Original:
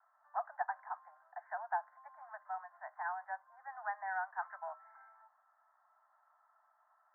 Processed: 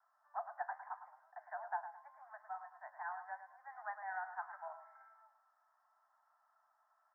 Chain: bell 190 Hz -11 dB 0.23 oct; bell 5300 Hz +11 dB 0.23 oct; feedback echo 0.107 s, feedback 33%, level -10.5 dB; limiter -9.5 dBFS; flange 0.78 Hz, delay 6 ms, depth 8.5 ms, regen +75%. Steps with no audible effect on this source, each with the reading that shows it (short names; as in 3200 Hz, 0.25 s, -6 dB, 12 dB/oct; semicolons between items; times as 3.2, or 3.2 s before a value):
bell 190 Hz: input band starts at 540 Hz; bell 5300 Hz: input band ends at 2000 Hz; limiter -9.5 dBFS: input peak -22.0 dBFS